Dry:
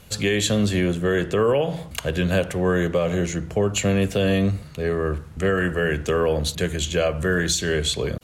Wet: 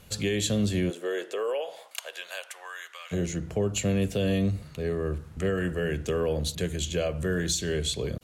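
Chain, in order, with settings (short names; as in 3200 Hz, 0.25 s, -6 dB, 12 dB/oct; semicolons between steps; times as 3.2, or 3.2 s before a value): 0.89–3.11 HPF 330 Hz -> 1300 Hz 24 dB/oct; dynamic EQ 1300 Hz, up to -7 dB, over -38 dBFS, Q 0.71; gain -4.5 dB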